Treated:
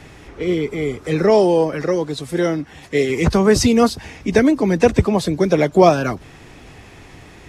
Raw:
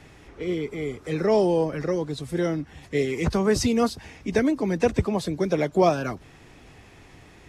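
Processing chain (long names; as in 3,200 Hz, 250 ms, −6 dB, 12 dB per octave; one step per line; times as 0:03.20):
0:01.30–0:03.10: low-shelf EQ 150 Hz −10 dB
level +8 dB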